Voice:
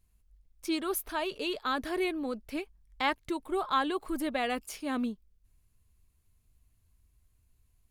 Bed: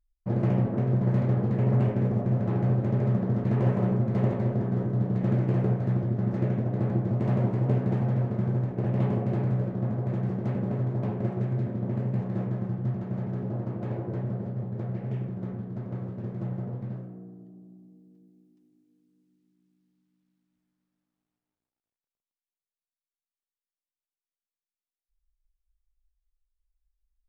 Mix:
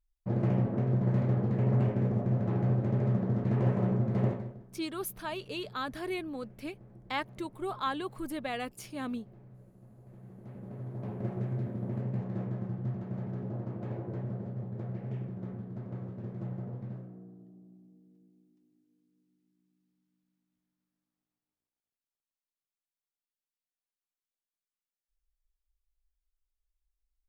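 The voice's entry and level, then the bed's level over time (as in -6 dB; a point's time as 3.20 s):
4.10 s, -4.5 dB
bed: 4.29 s -3.5 dB
4.68 s -27.5 dB
9.90 s -27.5 dB
11.29 s -5.5 dB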